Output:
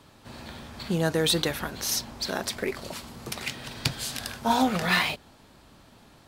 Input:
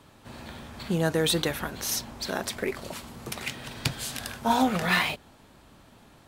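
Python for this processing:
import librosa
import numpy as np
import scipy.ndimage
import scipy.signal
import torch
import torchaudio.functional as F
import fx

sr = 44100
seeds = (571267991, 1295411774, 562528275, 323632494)

y = fx.peak_eq(x, sr, hz=4700.0, db=4.0, octaves=0.67)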